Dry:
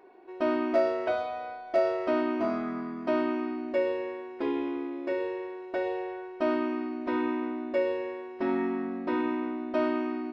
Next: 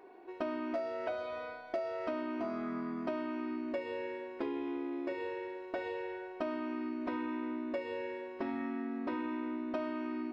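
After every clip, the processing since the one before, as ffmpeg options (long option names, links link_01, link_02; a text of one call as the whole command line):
ffmpeg -i in.wav -af "bandreject=frequency=184.9:width_type=h:width=4,bandreject=frequency=369.8:width_type=h:width=4,bandreject=frequency=554.7:width_type=h:width=4,bandreject=frequency=739.6:width_type=h:width=4,bandreject=frequency=924.5:width_type=h:width=4,bandreject=frequency=1109.4:width_type=h:width=4,bandreject=frequency=1294.3:width_type=h:width=4,bandreject=frequency=1479.2:width_type=h:width=4,bandreject=frequency=1664.1:width_type=h:width=4,bandreject=frequency=1849:width_type=h:width=4,bandreject=frequency=2033.9:width_type=h:width=4,bandreject=frequency=2218.8:width_type=h:width=4,bandreject=frequency=2403.7:width_type=h:width=4,bandreject=frequency=2588.6:width_type=h:width=4,bandreject=frequency=2773.5:width_type=h:width=4,bandreject=frequency=2958.4:width_type=h:width=4,bandreject=frequency=3143.3:width_type=h:width=4,bandreject=frequency=3328.2:width_type=h:width=4,bandreject=frequency=3513.1:width_type=h:width=4,bandreject=frequency=3698:width_type=h:width=4,bandreject=frequency=3882.9:width_type=h:width=4,bandreject=frequency=4067.8:width_type=h:width=4,bandreject=frequency=4252.7:width_type=h:width=4,bandreject=frequency=4437.6:width_type=h:width=4,bandreject=frequency=4622.5:width_type=h:width=4,bandreject=frequency=4807.4:width_type=h:width=4,bandreject=frequency=4992.3:width_type=h:width=4,bandreject=frequency=5177.2:width_type=h:width=4,bandreject=frequency=5362.1:width_type=h:width=4,bandreject=frequency=5547:width_type=h:width=4,bandreject=frequency=5731.9:width_type=h:width=4,bandreject=frequency=5916.8:width_type=h:width=4,acompressor=threshold=-34dB:ratio=6" out.wav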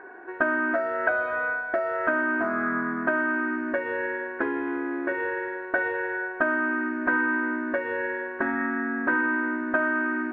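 ffmpeg -i in.wav -af "lowpass=frequency=1600:width_type=q:width=14,volume=7.5dB" out.wav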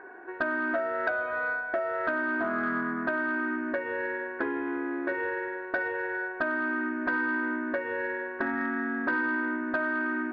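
ffmpeg -i in.wav -filter_complex "[0:a]asplit=2[link_01][link_02];[link_02]alimiter=limit=-15.5dB:level=0:latency=1:release=431,volume=-0.5dB[link_03];[link_01][link_03]amix=inputs=2:normalize=0,asoftclip=type=tanh:threshold=-7.5dB,volume=-8dB" out.wav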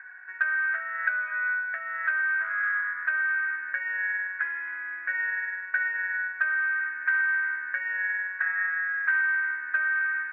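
ffmpeg -i in.wav -af "asuperpass=centerf=1900:order=4:qfactor=2.3,volume=8dB" out.wav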